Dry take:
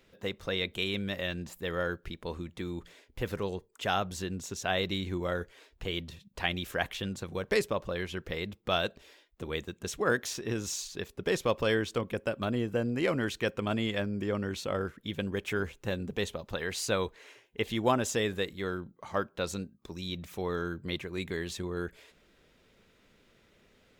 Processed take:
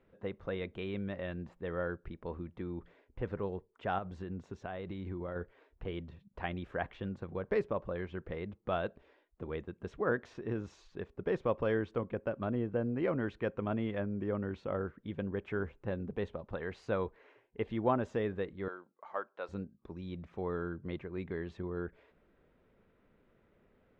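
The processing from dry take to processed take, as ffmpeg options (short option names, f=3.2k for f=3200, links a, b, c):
-filter_complex "[0:a]asettb=1/sr,asplit=3[a][b][c];[a]atrim=end=3.984[d];[b]atrim=start=3.98:end=5.36,asetpts=PTS-STARTPTS,afade=t=in:d=0.004:c=qsin,afade=t=out:st=1.376:d=0.004:c=qsin,acompressor=threshold=-32dB:ratio=6:attack=3.2:release=140:knee=1:detection=peak[e];[c]atrim=start=5.356[f];[d][e]acrossfade=d=0.004:c1=hsin:c2=qsin[g];[g][f]acrossfade=d=0.004:c1=qsin:c2=hsin,asettb=1/sr,asplit=3[h][i][j];[h]atrim=end=18.684[k];[i]atrim=start=18.68:end=19.49,asetpts=PTS-STARTPTS,afade=t=in:d=0.004:c=qsin,afade=t=out:st=0.806:d=0.004:c=qsin,highpass=610[l];[j]atrim=start=19.486[m];[k][l]acrossfade=d=0.004:c1=hsin:c2=qsin[n];[n][m]acrossfade=d=0.004:c1=qsin:c2=hsin,lowpass=1.4k,volume=-3dB"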